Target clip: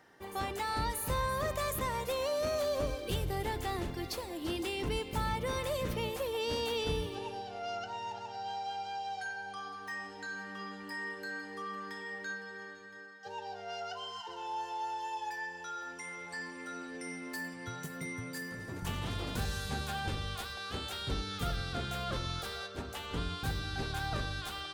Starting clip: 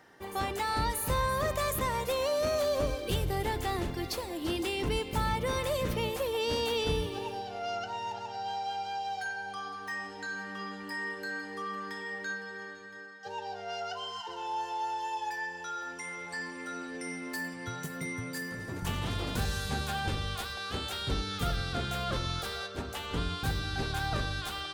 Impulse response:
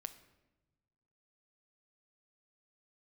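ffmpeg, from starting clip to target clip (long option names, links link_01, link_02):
-filter_complex "[0:a]asettb=1/sr,asplit=3[link_01][link_02][link_03];[link_01]atrim=end=7.154[link_04];[link_02]atrim=start=7.15:end=9.6,asetpts=PTS-STARTPTS,afade=type=in:duration=0.004:curve=qsin,afade=type=out:start_time=2.446:duration=0.004:curve=qsin,lowpass=frequency=11000:width=0.5412,lowpass=frequency=11000:width=1.3066[link_05];[link_03]atrim=start=9.596[link_06];[link_04][link_05]acrossfade=duration=0.004:curve1=hsin:curve2=qsin[link_07];[link_07][link_06]acrossfade=duration=0.004:curve1=qsin:curve2=hsin,volume=-3.5dB"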